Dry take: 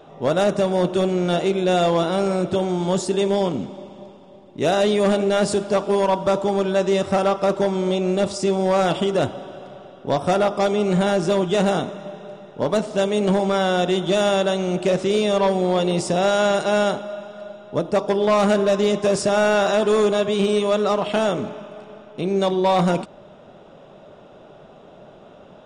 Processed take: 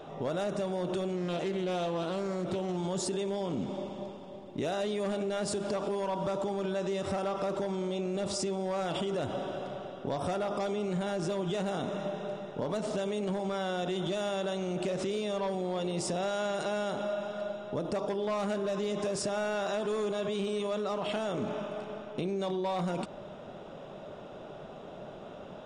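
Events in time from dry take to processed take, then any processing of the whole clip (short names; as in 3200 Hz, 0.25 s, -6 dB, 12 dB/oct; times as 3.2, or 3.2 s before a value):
1.16–2.77 Doppler distortion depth 0.21 ms
whole clip: limiter -22 dBFS; compressor, threshold -29 dBFS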